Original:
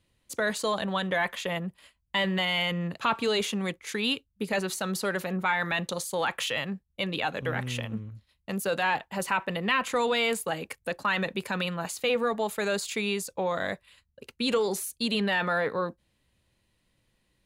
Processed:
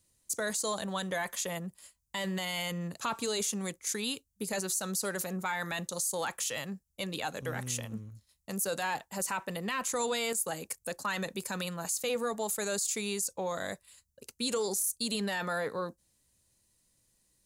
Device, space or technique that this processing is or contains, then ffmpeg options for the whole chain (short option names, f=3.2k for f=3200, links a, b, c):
over-bright horn tweeter: -af "highshelf=f=4.5k:t=q:w=1.5:g=14,alimiter=limit=-16.5dB:level=0:latency=1:release=50,volume=-5.5dB"